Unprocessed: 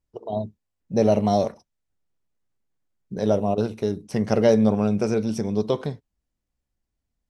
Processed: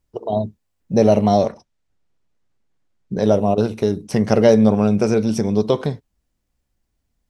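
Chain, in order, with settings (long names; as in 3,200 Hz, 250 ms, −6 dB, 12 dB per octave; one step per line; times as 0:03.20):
0:01.24–0:03.23: Bessel low-pass filter 6,300 Hz, order 2
in parallel at −3 dB: downward compressor, threshold −27 dBFS, peak gain reduction 14 dB
on the sum: level +3.5 dB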